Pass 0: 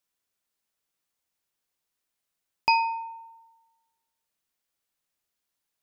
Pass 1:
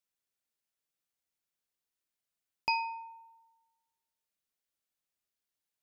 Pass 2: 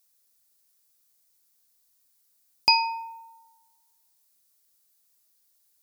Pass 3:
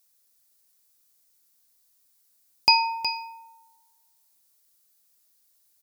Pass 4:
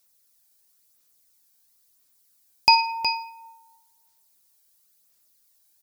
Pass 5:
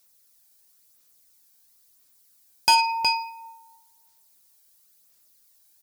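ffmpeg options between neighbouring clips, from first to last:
ffmpeg -i in.wav -af "equalizer=frequency=990:width=1.7:gain=-3,volume=-7dB" out.wav
ffmpeg -i in.wav -af "aexciter=amount=3.9:drive=3.1:freq=4100,volume=8.5dB" out.wav
ffmpeg -i in.wav -af "aecho=1:1:367:0.316,volume=1.5dB" out.wav
ffmpeg -i in.wav -af "aphaser=in_gain=1:out_gain=1:delay=1.3:decay=0.35:speed=0.97:type=sinusoidal,volume=1dB" out.wav
ffmpeg -i in.wav -af "asoftclip=type=tanh:threshold=-15.5dB,volume=3.5dB" out.wav

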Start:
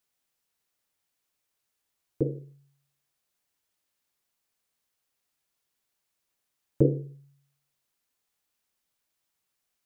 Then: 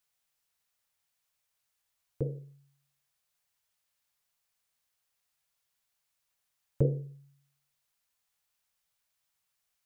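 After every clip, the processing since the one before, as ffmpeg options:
ffmpeg -i in.wav -af "equalizer=frequency=310:width_type=o:width=0.99:gain=-13" out.wav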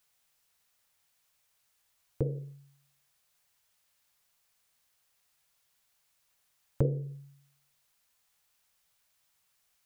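ffmpeg -i in.wav -af "acompressor=threshold=-37dB:ratio=2,volume=7dB" out.wav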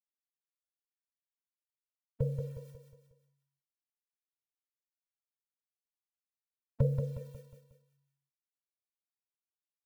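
ffmpeg -i in.wav -filter_complex "[0:a]acrusher=bits=9:mix=0:aa=0.000001,asplit=2[link_01][link_02];[link_02]aecho=0:1:181|362|543|724|905:0.531|0.228|0.0982|0.0422|0.0181[link_03];[link_01][link_03]amix=inputs=2:normalize=0,afftfilt=real='re*eq(mod(floor(b*sr/1024/220),2),0)':imag='im*eq(mod(floor(b*sr/1024/220),2),0)':win_size=1024:overlap=0.75" out.wav

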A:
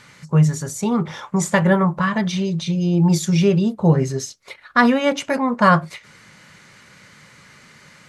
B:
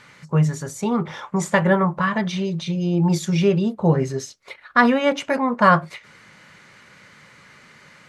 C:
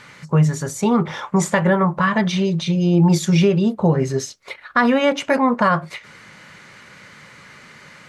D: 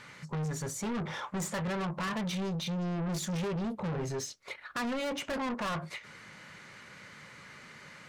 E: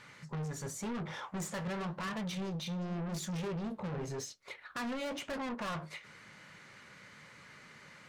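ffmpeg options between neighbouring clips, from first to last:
ffmpeg -i in.wav -af "bass=frequency=250:gain=-4,treble=frequency=4000:gain=-6" out.wav
ffmpeg -i in.wav -af "alimiter=limit=-12dB:level=0:latency=1:release=247,volume=5dB" out.wav
ffmpeg -i in.wav -af "asoftclip=type=tanh:threshold=-24.5dB,volume=-7dB" out.wav
ffmpeg -i in.wav -af "flanger=delay=6.2:depth=9.8:regen=-72:speed=0.92:shape=sinusoidal" out.wav

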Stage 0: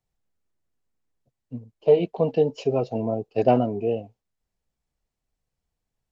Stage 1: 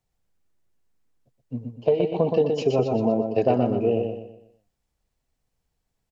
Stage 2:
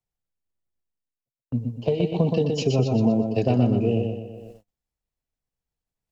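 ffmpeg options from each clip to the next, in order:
ffmpeg -i in.wav -filter_complex "[0:a]acompressor=threshold=-20dB:ratio=10,asplit=2[link_01][link_02];[link_02]aecho=0:1:122|244|366|488|610:0.562|0.214|0.0812|0.0309|0.0117[link_03];[link_01][link_03]amix=inputs=2:normalize=0,volume=3.5dB" out.wav
ffmpeg -i in.wav -filter_complex "[0:a]areverse,acompressor=mode=upward:threshold=-37dB:ratio=2.5,areverse,agate=range=-40dB:threshold=-46dB:ratio=16:detection=peak,acrossover=split=230|3000[link_01][link_02][link_03];[link_02]acompressor=threshold=-56dB:ratio=1.5[link_04];[link_01][link_04][link_03]amix=inputs=3:normalize=0,volume=8dB" out.wav

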